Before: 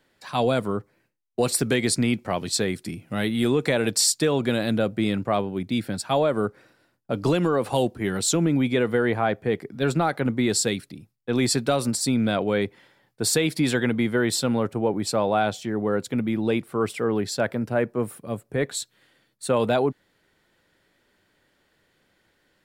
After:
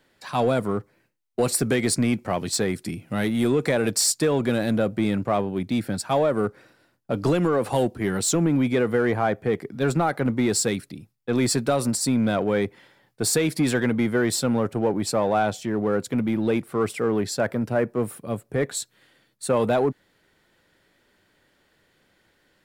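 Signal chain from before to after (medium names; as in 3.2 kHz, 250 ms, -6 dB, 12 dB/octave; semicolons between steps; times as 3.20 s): in parallel at -5.5 dB: overload inside the chain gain 24 dB; on the sum: dynamic bell 3.5 kHz, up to -5 dB, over -40 dBFS, Q 1.4; trim -1.5 dB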